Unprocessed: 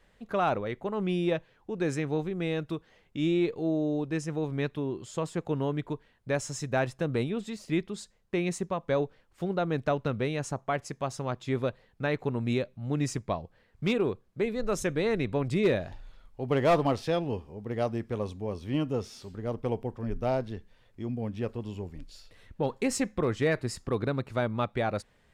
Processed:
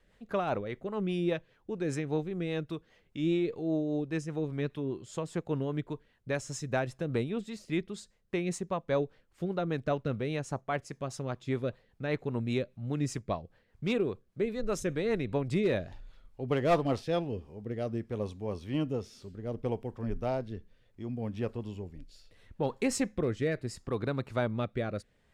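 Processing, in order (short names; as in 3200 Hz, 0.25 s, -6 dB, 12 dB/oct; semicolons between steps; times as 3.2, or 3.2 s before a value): rotary speaker horn 5 Hz, later 0.7 Hz, at 16.89; gain -1 dB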